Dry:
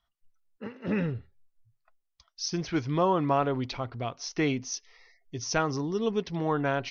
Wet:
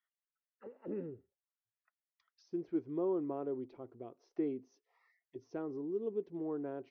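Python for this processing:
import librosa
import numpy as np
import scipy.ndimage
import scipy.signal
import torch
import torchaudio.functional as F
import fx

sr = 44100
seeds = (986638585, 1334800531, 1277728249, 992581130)

y = fx.auto_wah(x, sr, base_hz=360.0, top_hz=1900.0, q=3.8, full_db=-33.0, direction='down')
y = y * 10.0 ** (-3.0 / 20.0)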